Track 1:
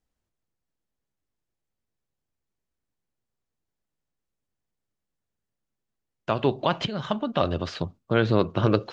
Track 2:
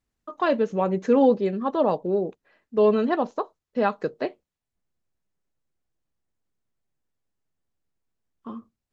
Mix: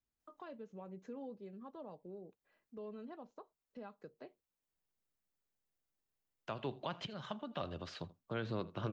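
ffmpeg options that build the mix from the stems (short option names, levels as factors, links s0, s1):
-filter_complex "[0:a]lowpass=f=1900:p=1,aemphasis=mode=production:type=riaa,adelay=200,volume=0.596,asplit=2[s0][s1];[s1]volume=0.0841[s2];[1:a]bandreject=f=1800:w=20,acompressor=threshold=0.00708:ratio=1.5,volume=0.224[s3];[s2]aecho=0:1:82:1[s4];[s0][s3][s4]amix=inputs=3:normalize=0,acrossover=split=190[s5][s6];[s6]acompressor=threshold=0.00112:ratio=1.5[s7];[s5][s7]amix=inputs=2:normalize=0"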